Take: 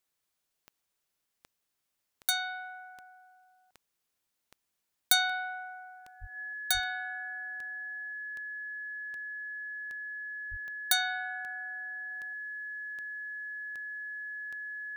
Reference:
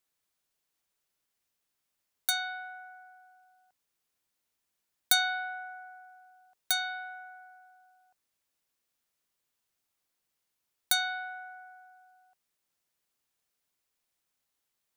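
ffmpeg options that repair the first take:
-filter_complex "[0:a]adeclick=t=4,bandreject=f=1700:w=30,asplit=3[s0][s1][s2];[s0]afade=t=out:st=6.2:d=0.02[s3];[s1]highpass=f=140:w=0.5412,highpass=f=140:w=1.3066,afade=t=in:st=6.2:d=0.02,afade=t=out:st=6.32:d=0.02[s4];[s2]afade=t=in:st=6.32:d=0.02[s5];[s3][s4][s5]amix=inputs=3:normalize=0,asplit=3[s6][s7][s8];[s6]afade=t=out:st=6.73:d=0.02[s9];[s7]highpass=f=140:w=0.5412,highpass=f=140:w=1.3066,afade=t=in:st=6.73:d=0.02,afade=t=out:st=6.85:d=0.02[s10];[s8]afade=t=in:st=6.85:d=0.02[s11];[s9][s10][s11]amix=inputs=3:normalize=0,asplit=3[s12][s13][s14];[s12]afade=t=out:st=10.5:d=0.02[s15];[s13]highpass=f=140:w=0.5412,highpass=f=140:w=1.3066,afade=t=in:st=10.5:d=0.02,afade=t=out:st=10.62:d=0.02[s16];[s14]afade=t=in:st=10.62:d=0.02[s17];[s15][s16][s17]amix=inputs=3:normalize=0,asetnsamples=n=441:p=0,asendcmd='12.11 volume volume -3dB',volume=1"

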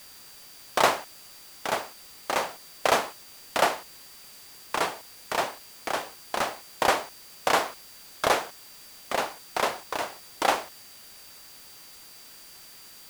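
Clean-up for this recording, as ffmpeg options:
-af "bandreject=f=4700:w=30,afwtdn=0.0035"

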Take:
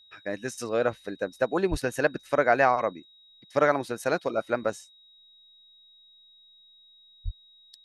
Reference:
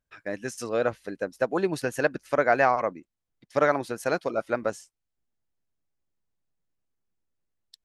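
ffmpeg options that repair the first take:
-filter_complex "[0:a]bandreject=f=3800:w=30,asplit=3[s0][s1][s2];[s0]afade=t=out:st=1.7:d=0.02[s3];[s1]highpass=f=140:w=0.5412,highpass=f=140:w=1.3066,afade=t=in:st=1.7:d=0.02,afade=t=out:st=1.82:d=0.02[s4];[s2]afade=t=in:st=1.82:d=0.02[s5];[s3][s4][s5]amix=inputs=3:normalize=0,asplit=3[s6][s7][s8];[s6]afade=t=out:st=7.24:d=0.02[s9];[s7]highpass=f=140:w=0.5412,highpass=f=140:w=1.3066,afade=t=in:st=7.24:d=0.02,afade=t=out:st=7.36:d=0.02[s10];[s8]afade=t=in:st=7.36:d=0.02[s11];[s9][s10][s11]amix=inputs=3:normalize=0"

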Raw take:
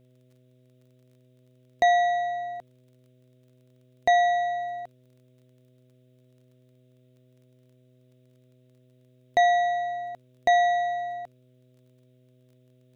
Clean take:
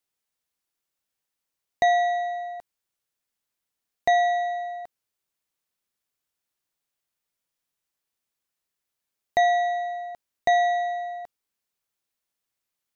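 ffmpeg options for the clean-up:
-af "adeclick=t=4,bandreject=f=126.2:t=h:w=4,bandreject=f=252.4:t=h:w=4,bandreject=f=378.6:t=h:w=4,bandreject=f=504.8:t=h:w=4,bandreject=f=631:t=h:w=4,agate=range=0.0891:threshold=0.00224"

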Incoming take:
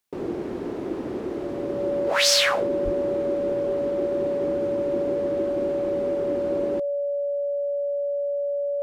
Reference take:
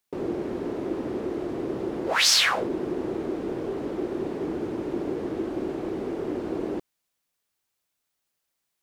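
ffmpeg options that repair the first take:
-filter_complex "[0:a]bandreject=f=570:w=30,asplit=3[s0][s1][s2];[s0]afade=t=out:st=2.84:d=0.02[s3];[s1]highpass=f=140:w=0.5412,highpass=f=140:w=1.3066,afade=t=in:st=2.84:d=0.02,afade=t=out:st=2.96:d=0.02[s4];[s2]afade=t=in:st=2.96:d=0.02[s5];[s3][s4][s5]amix=inputs=3:normalize=0"

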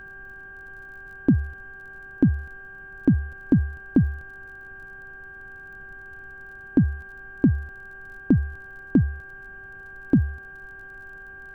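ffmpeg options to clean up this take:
-af "adeclick=t=4,bandreject=f=385.7:t=h:w=4,bandreject=f=771.4:t=h:w=4,bandreject=f=1157.1:t=h:w=4,bandreject=f=1542.8:t=h:w=4,bandreject=f=1600:w=30,afftdn=nr=26:nf=-42"

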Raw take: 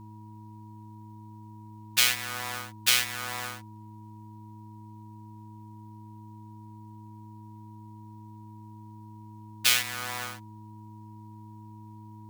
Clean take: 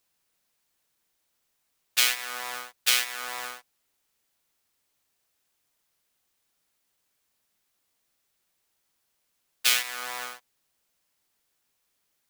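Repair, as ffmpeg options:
-af "bandreject=f=107.4:t=h:w=4,bandreject=f=214.8:t=h:w=4,bandreject=f=322.2:t=h:w=4,bandreject=f=960:w=30"

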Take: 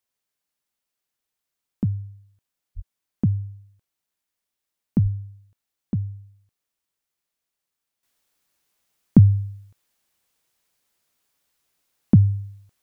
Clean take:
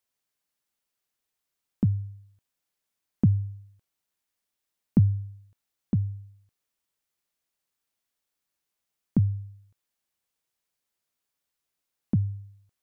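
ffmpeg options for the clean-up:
-filter_complex "[0:a]asplit=3[s0][s1][s2];[s0]afade=t=out:st=2.75:d=0.02[s3];[s1]highpass=f=140:w=0.5412,highpass=f=140:w=1.3066,afade=t=in:st=2.75:d=0.02,afade=t=out:st=2.87:d=0.02[s4];[s2]afade=t=in:st=2.87:d=0.02[s5];[s3][s4][s5]amix=inputs=3:normalize=0,asplit=3[s6][s7][s8];[s6]afade=t=out:st=5.02:d=0.02[s9];[s7]highpass=f=140:w=0.5412,highpass=f=140:w=1.3066,afade=t=in:st=5.02:d=0.02,afade=t=out:st=5.14:d=0.02[s10];[s8]afade=t=in:st=5.14:d=0.02[s11];[s9][s10][s11]amix=inputs=3:normalize=0,asetnsamples=n=441:p=0,asendcmd='8.03 volume volume -10.5dB',volume=1"

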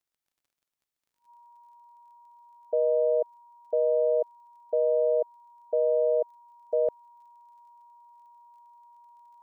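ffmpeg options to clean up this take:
-af "adeclick=t=4,bandreject=f=950:w=30"

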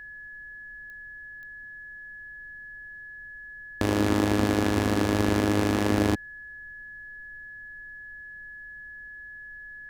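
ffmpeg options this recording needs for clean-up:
-af "adeclick=t=4,bandreject=f=1700:w=30,agate=range=0.0891:threshold=0.0178"

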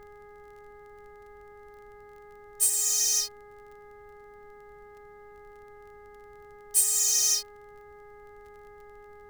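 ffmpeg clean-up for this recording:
-af "adeclick=t=4,bandreject=f=413.9:t=h:w=4,bandreject=f=827.8:t=h:w=4,bandreject=f=1241.7:t=h:w=4,bandreject=f=1655.6:t=h:w=4,bandreject=f=2069.5:t=h:w=4,agate=range=0.0891:threshold=0.00794"

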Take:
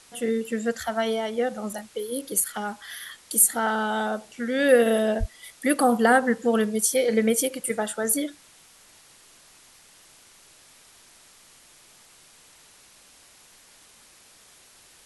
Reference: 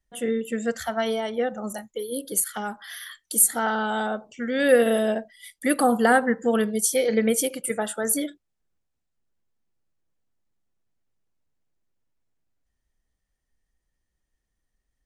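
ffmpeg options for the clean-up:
-filter_complex "[0:a]asplit=3[s0][s1][s2];[s0]afade=t=out:st=5.19:d=0.02[s3];[s1]highpass=f=140:w=0.5412,highpass=f=140:w=1.3066,afade=t=in:st=5.19:d=0.02,afade=t=out:st=5.31:d=0.02[s4];[s2]afade=t=in:st=5.31:d=0.02[s5];[s3][s4][s5]amix=inputs=3:normalize=0,afwtdn=0.0028"

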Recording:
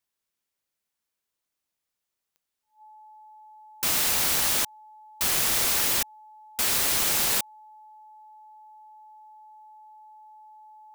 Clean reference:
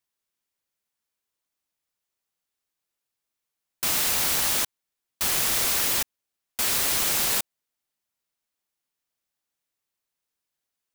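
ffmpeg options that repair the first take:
-af "adeclick=t=4,bandreject=f=860:w=30"

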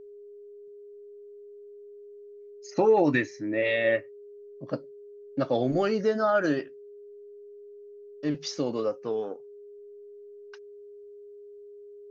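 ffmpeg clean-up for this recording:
-af "bandreject=f=410:w=30"

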